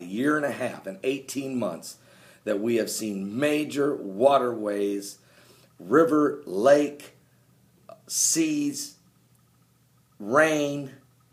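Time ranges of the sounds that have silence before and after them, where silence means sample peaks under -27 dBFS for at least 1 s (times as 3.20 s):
8.11–8.85 s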